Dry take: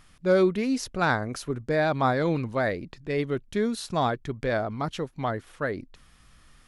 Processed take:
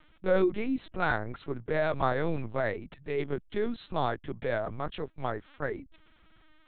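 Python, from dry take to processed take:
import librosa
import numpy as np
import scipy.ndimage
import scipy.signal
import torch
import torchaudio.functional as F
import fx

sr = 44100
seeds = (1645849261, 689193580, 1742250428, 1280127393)

y = fx.lpc_vocoder(x, sr, seeds[0], excitation='pitch_kept', order=8)
y = F.gain(torch.from_numpy(y), -4.0).numpy()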